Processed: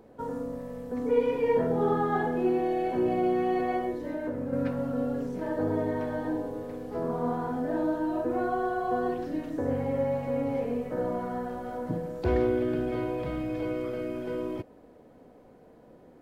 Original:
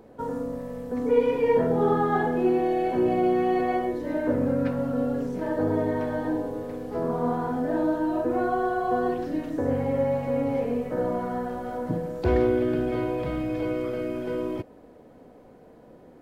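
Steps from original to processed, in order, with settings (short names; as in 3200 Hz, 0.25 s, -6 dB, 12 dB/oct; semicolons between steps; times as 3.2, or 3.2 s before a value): 3.93–4.53 compressor, threshold -26 dBFS, peak gain reduction 7 dB; gain -3.5 dB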